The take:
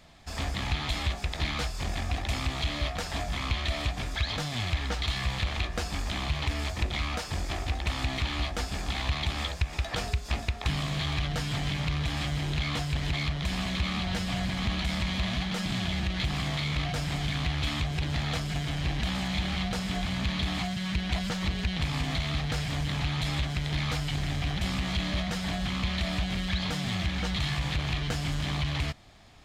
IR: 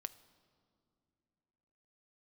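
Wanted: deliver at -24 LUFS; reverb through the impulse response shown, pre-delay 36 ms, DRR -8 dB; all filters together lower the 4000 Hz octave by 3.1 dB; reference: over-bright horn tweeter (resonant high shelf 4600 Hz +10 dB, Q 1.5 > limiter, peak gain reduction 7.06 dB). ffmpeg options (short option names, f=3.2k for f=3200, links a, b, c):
-filter_complex "[0:a]equalizer=f=4k:t=o:g=-5,asplit=2[a][b];[1:a]atrim=start_sample=2205,adelay=36[c];[b][c]afir=irnorm=-1:irlink=0,volume=11.5dB[d];[a][d]amix=inputs=2:normalize=0,highshelf=f=4.6k:t=q:w=1.5:g=10,alimiter=limit=-14.5dB:level=0:latency=1"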